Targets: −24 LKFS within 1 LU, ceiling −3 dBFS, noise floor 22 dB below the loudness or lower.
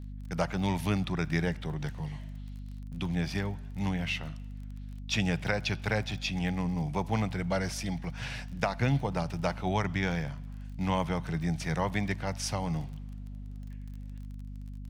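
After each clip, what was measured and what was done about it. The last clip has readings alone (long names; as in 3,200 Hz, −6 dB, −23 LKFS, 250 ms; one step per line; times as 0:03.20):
crackle rate 28 per second; mains hum 50 Hz; hum harmonics up to 250 Hz; level of the hum −38 dBFS; integrated loudness −32.0 LKFS; sample peak −10.5 dBFS; target loudness −24.0 LKFS
→ click removal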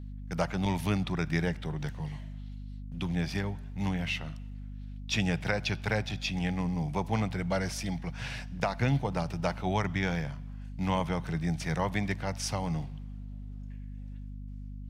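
crackle rate 0.067 per second; mains hum 50 Hz; hum harmonics up to 250 Hz; level of the hum −38 dBFS
→ mains-hum notches 50/100/150/200/250 Hz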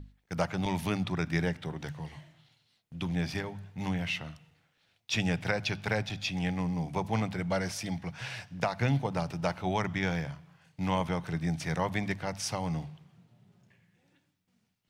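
mains hum none found; integrated loudness −32.5 LKFS; sample peak −12.0 dBFS; target loudness −24.0 LKFS
→ level +8.5 dB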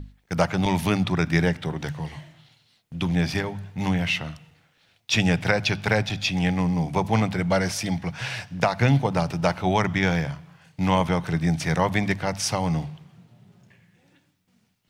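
integrated loudness −24.0 LKFS; sample peak −3.5 dBFS; background noise floor −66 dBFS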